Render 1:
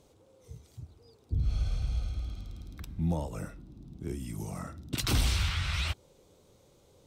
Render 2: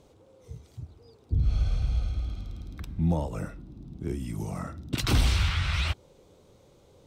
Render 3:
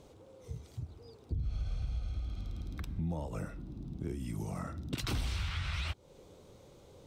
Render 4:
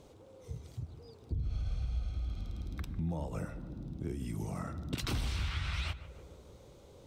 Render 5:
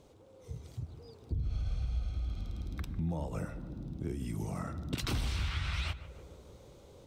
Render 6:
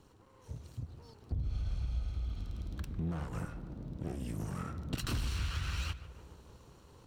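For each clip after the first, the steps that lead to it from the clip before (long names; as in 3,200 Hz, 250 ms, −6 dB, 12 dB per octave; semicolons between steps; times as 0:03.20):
high-shelf EQ 5,100 Hz −8 dB; level +4.5 dB
downward compressor 3 to 1, threshold −37 dBFS, peak gain reduction 14 dB; level +1 dB
feedback echo with a low-pass in the loop 149 ms, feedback 64%, low-pass 1,700 Hz, level −13 dB
automatic gain control gain up to 4 dB; level −3 dB
lower of the sound and its delayed copy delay 0.71 ms; level −1 dB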